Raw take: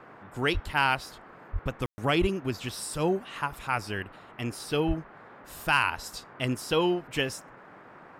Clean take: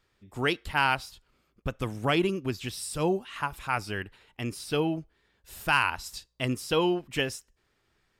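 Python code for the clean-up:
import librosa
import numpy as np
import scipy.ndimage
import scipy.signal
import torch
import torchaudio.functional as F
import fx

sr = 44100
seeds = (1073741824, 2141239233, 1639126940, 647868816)

y = fx.fix_deplosive(x, sr, at_s=(0.53, 1.52, 2.2, 4.87))
y = fx.fix_ambience(y, sr, seeds[0], print_start_s=7.55, print_end_s=8.05, start_s=1.86, end_s=1.98)
y = fx.noise_reduce(y, sr, print_start_s=7.55, print_end_s=8.05, reduce_db=22.0)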